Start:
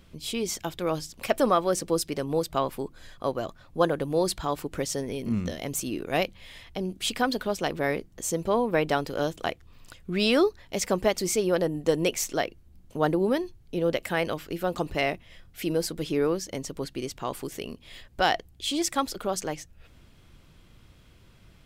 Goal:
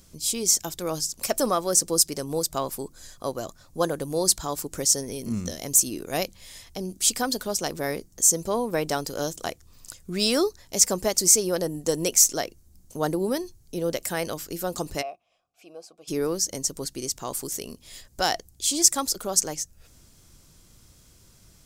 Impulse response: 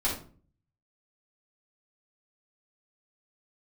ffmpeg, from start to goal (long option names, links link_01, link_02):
-filter_complex "[0:a]asplit=3[link_01][link_02][link_03];[link_01]afade=type=out:start_time=15.01:duration=0.02[link_04];[link_02]asplit=3[link_05][link_06][link_07];[link_05]bandpass=frequency=730:width_type=q:width=8,volume=0dB[link_08];[link_06]bandpass=frequency=1090:width_type=q:width=8,volume=-6dB[link_09];[link_07]bandpass=frequency=2440:width_type=q:width=8,volume=-9dB[link_10];[link_08][link_09][link_10]amix=inputs=3:normalize=0,afade=type=in:start_time=15.01:duration=0.02,afade=type=out:start_time=16.07:duration=0.02[link_11];[link_03]afade=type=in:start_time=16.07:duration=0.02[link_12];[link_04][link_11][link_12]amix=inputs=3:normalize=0,highshelf=frequency=4300:width_type=q:width=1.5:gain=13,volume=-1.5dB"